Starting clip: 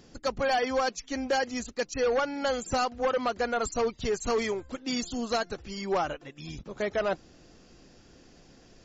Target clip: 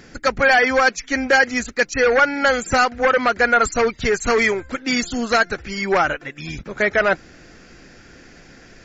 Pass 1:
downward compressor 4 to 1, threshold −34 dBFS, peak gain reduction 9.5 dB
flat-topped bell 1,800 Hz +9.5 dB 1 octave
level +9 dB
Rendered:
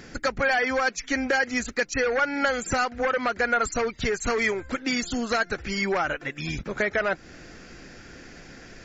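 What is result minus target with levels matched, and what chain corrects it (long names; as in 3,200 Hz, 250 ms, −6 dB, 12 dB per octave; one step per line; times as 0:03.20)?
downward compressor: peak gain reduction +9.5 dB
flat-topped bell 1,800 Hz +9.5 dB 1 octave
level +9 dB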